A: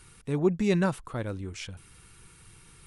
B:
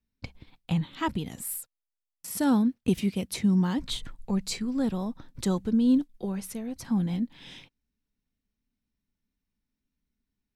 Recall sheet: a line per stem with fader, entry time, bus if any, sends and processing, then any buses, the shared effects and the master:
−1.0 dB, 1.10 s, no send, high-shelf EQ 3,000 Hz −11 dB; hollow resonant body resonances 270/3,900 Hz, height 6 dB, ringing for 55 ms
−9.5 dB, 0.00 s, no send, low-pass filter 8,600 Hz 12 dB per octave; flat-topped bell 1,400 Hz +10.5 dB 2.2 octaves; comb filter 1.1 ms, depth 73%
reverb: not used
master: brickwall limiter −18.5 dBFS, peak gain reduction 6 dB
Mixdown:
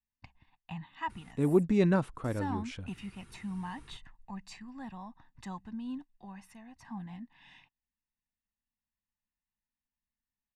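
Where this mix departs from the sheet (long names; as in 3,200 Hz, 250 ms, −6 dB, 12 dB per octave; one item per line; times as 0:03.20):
stem B −9.5 dB → −18.5 dB
master: missing brickwall limiter −18.5 dBFS, peak gain reduction 6 dB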